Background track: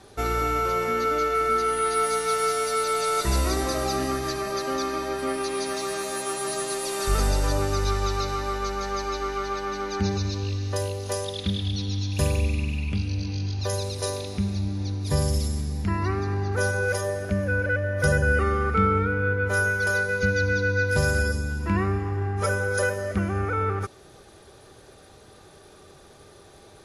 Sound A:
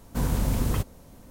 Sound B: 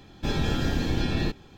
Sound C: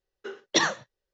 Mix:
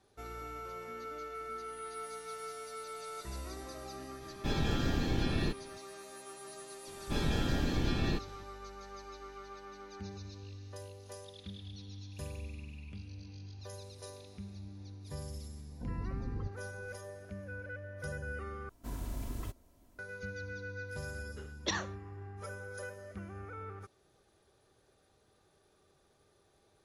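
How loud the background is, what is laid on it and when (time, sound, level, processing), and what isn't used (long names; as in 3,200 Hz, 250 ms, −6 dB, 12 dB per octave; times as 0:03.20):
background track −19.5 dB
0:04.21: mix in B −6 dB
0:06.87: mix in B −6 dB
0:15.66: mix in A −13.5 dB + gate on every frequency bin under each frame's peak −20 dB strong
0:18.69: overwrite with A −16 dB + comb filter 3 ms, depth 53%
0:21.12: mix in C −12 dB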